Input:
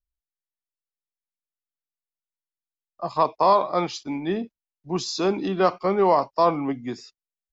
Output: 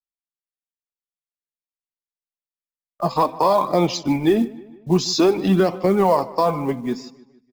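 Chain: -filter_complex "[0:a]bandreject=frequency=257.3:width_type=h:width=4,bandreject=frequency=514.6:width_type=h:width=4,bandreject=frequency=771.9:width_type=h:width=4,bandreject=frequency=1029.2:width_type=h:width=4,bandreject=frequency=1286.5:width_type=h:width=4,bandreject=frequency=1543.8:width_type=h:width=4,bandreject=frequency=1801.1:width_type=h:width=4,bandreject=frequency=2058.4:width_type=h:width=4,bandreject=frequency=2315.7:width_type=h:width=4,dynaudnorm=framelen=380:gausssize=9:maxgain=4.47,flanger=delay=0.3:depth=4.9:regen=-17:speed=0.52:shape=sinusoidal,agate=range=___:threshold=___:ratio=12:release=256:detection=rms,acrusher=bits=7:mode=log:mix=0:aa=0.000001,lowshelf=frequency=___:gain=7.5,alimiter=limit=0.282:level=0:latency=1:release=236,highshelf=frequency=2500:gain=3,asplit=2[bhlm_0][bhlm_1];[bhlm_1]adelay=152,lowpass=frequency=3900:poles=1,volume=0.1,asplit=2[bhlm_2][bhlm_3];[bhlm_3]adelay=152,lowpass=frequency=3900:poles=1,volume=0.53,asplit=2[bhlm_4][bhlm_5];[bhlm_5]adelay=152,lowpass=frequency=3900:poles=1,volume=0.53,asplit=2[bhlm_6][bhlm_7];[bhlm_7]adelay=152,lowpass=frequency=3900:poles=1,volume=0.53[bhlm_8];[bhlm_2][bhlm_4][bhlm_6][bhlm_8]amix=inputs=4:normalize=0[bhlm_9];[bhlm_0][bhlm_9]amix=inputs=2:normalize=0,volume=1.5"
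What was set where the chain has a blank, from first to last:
0.0178, 0.00631, 470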